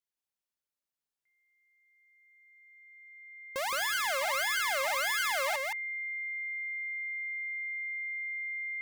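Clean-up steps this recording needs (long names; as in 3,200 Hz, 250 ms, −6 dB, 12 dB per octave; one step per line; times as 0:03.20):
notch filter 2,100 Hz, Q 30
echo removal 168 ms −4 dB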